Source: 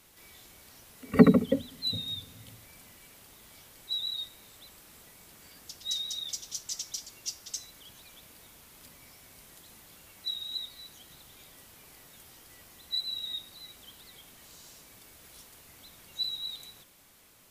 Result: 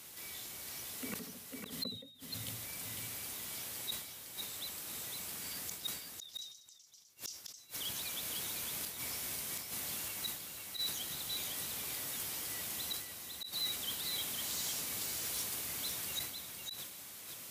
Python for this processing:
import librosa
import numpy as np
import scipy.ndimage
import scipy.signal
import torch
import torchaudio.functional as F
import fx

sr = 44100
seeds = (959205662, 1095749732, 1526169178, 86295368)

p1 = scipy.signal.sosfilt(scipy.signal.butter(2, 77.0, 'highpass', fs=sr, output='sos'), x)
p2 = fx.high_shelf(p1, sr, hz=2800.0, db=7.0)
p3 = fx.rider(p2, sr, range_db=10, speed_s=2.0)
p4 = p2 + (p3 * 10.0 ** (-2.5 / 20.0))
p5 = fx.gate_flip(p4, sr, shuts_db=-25.0, range_db=-37)
p6 = np.clip(p5, -10.0 ** (-31.5 / 20.0), 10.0 ** (-31.5 / 20.0))
p7 = p6 + fx.echo_single(p6, sr, ms=504, db=-4.5, dry=0)
y = fx.sustainer(p7, sr, db_per_s=75.0)